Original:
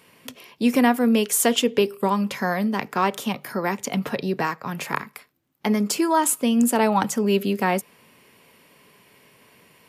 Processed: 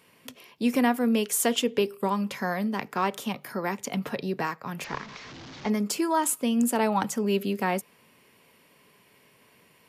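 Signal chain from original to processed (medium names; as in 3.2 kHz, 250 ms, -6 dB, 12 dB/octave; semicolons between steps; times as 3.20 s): 4.84–5.70 s: one-bit delta coder 32 kbps, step -32.5 dBFS; trim -5 dB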